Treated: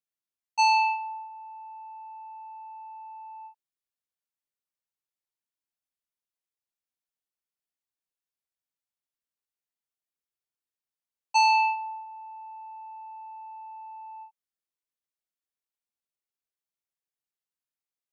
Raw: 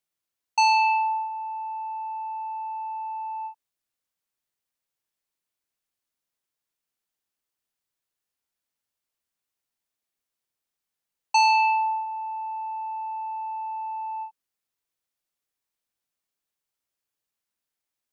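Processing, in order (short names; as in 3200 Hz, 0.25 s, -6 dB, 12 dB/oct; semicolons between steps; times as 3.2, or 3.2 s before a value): gate -21 dBFS, range -9 dB; gain -1.5 dB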